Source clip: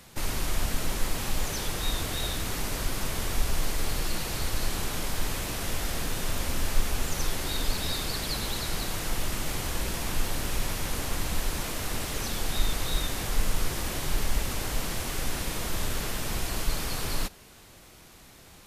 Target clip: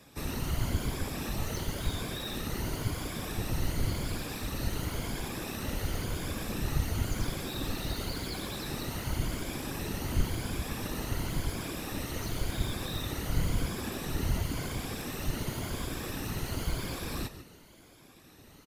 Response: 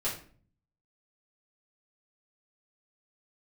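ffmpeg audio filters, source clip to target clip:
-filter_complex "[0:a]afftfilt=real='re*pow(10,8/40*sin(2*PI*(1.8*log(max(b,1)*sr/1024/100)/log(2)-(0.94)*(pts-256)/sr)))':imag='im*pow(10,8/40*sin(2*PI*(1.8*log(max(b,1)*sr/1024/100)/log(2)-(0.94)*(pts-256)/sr)))':win_size=1024:overlap=0.75,equalizer=f=125:t=o:w=1:g=-3,equalizer=f=250:t=o:w=1:g=9,equalizer=f=8000:t=o:w=1:g=-3,asplit=4[s0][s1][s2][s3];[s1]adelay=143,afreqshift=76,volume=0.2[s4];[s2]adelay=286,afreqshift=152,volume=0.0638[s5];[s3]adelay=429,afreqshift=228,volume=0.0204[s6];[s0][s4][s5][s6]amix=inputs=4:normalize=0,acrossover=split=260|2400[s7][s8][s9];[s9]volume=47.3,asoftclip=hard,volume=0.0211[s10];[s7][s8][s10]amix=inputs=3:normalize=0,afftfilt=real='hypot(re,im)*cos(2*PI*random(0))':imag='hypot(re,im)*sin(2*PI*random(1))':win_size=512:overlap=0.75"

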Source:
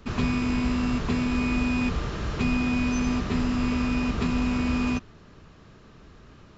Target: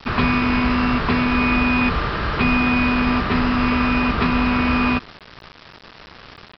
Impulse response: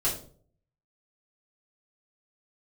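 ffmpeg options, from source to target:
-af "equalizer=f=1400:t=o:w=2.4:g=10,aresample=11025,acrusher=bits=6:mix=0:aa=0.000001,aresample=44100,volume=1.68"

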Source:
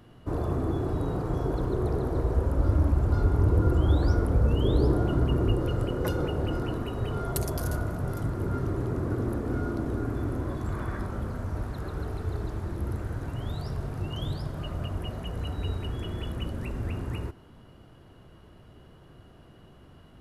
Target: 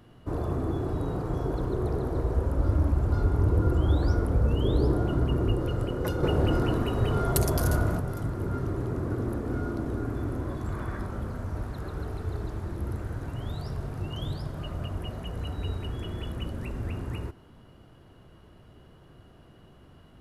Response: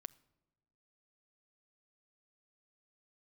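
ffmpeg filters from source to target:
-filter_complex "[0:a]asettb=1/sr,asplit=3[s0][s1][s2];[s0]atrim=end=6.234[s3];[s1]atrim=start=6.23:end=8,asetpts=PTS-STARTPTS,afade=t=in:d=0.004:c=qsin,afade=t=out:st=1.766:d=0.004:c=qsin,acontrast=49[s4];[s2]atrim=start=7.996[s5];[s3][s4]acrossfade=d=0.004:c1=hsin:c2=qsin[s6];[s6][s5]acrossfade=d=0.004:c1=qsin:c2=hsin,volume=0.891"

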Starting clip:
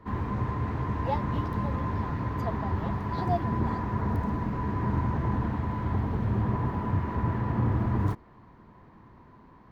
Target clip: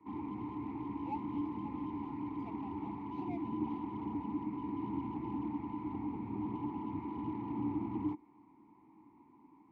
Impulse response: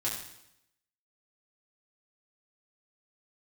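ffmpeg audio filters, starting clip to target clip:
-filter_complex "[0:a]acrossover=split=230|650[s0][s1][s2];[s2]asoftclip=type=hard:threshold=0.0141[s3];[s0][s1][s3]amix=inputs=3:normalize=0,asplit=3[s4][s5][s6];[s4]bandpass=f=300:t=q:w=8,volume=1[s7];[s5]bandpass=f=870:t=q:w=8,volume=0.501[s8];[s6]bandpass=f=2240:t=q:w=8,volume=0.355[s9];[s7][s8][s9]amix=inputs=3:normalize=0,volume=1.41"

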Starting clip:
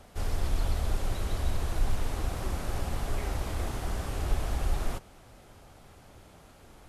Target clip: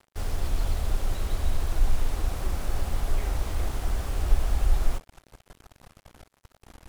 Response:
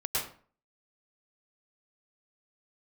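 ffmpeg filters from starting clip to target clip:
-af "asubboost=boost=2.5:cutoff=71,acrusher=bits=6:mix=0:aa=0.5"

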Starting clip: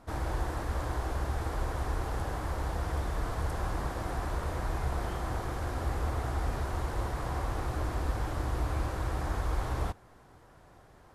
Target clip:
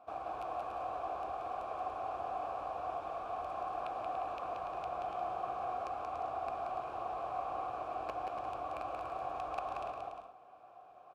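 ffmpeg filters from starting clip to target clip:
-filter_complex "[0:a]aeval=exprs='(mod(11.2*val(0)+1,2)-1)/11.2':c=same,acompressor=threshold=0.0158:ratio=1.5,asplit=3[s0][s1][s2];[s0]bandpass=f=730:t=q:w=8,volume=1[s3];[s1]bandpass=f=1090:t=q:w=8,volume=0.501[s4];[s2]bandpass=f=2440:t=q:w=8,volume=0.355[s5];[s3][s4][s5]amix=inputs=3:normalize=0,aecho=1:1:180|288|352.8|391.7|415:0.631|0.398|0.251|0.158|0.1,volume=2.37"

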